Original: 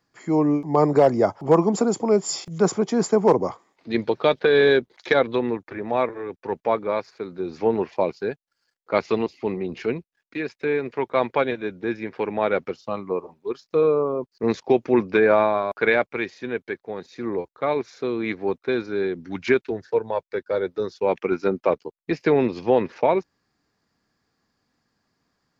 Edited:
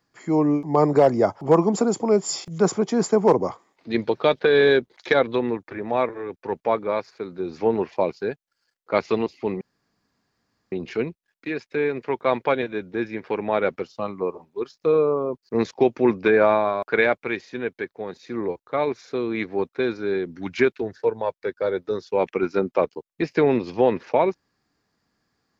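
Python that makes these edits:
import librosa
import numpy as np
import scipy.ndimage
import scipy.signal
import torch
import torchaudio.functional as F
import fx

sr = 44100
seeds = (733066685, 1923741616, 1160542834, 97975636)

y = fx.edit(x, sr, fx.insert_room_tone(at_s=9.61, length_s=1.11), tone=tone)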